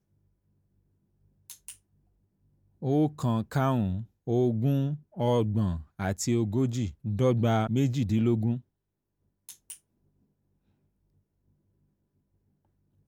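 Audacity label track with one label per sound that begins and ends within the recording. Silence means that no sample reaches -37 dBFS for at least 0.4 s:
1.500000	1.710000	sound
2.820000	8.590000	sound
9.490000	9.740000	sound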